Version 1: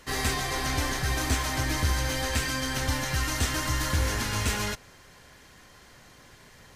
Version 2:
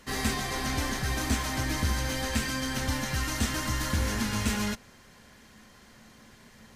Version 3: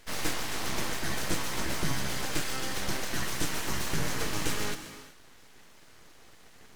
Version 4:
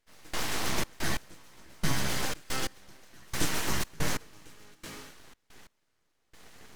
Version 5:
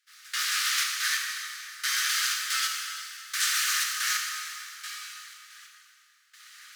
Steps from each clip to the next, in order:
bell 220 Hz +13 dB 0.29 oct; gain -2.5 dB
full-wave rectifier; non-linear reverb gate 0.41 s flat, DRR 9 dB
step gate "..xxx.x.." 90 bpm -24 dB; gain +2 dB
rippled Chebyshev high-pass 1200 Hz, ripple 3 dB; plate-style reverb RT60 2.6 s, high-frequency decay 0.9×, DRR 0 dB; gain +7 dB

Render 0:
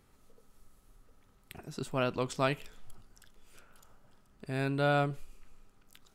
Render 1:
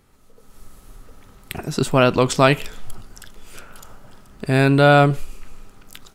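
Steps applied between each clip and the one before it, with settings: AGC gain up to 11 dB; in parallel at 0 dB: limiter -12.5 dBFS, peak gain reduction 7 dB; on the sum: gain +1 dB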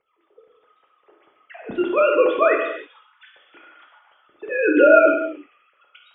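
sine-wave speech; rotary speaker horn 7 Hz; reverb, pre-delay 3 ms, DRR 0 dB; gain -1.5 dB

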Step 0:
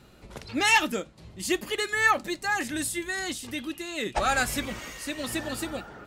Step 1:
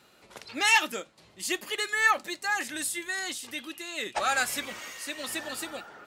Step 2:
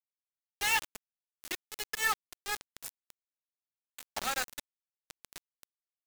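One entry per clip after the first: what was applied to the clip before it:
HPF 730 Hz 6 dB/oct
added harmonics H 2 -22 dB, 6 -40 dB, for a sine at -8 dBFS; bit-crush 4-bit; gain -8 dB

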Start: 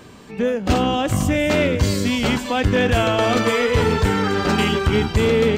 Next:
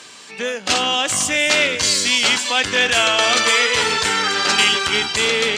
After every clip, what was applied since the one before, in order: weighting filter ITU-R 468; gain +1.5 dB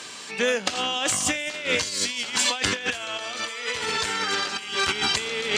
negative-ratio compressor -22 dBFS, ratio -0.5; gain -3.5 dB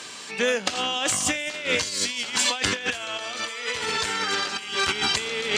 nothing audible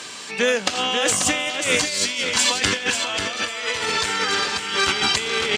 echo 0.539 s -6.5 dB; gain +3.5 dB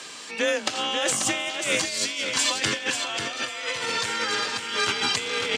frequency shift +29 Hz; gain -4.5 dB

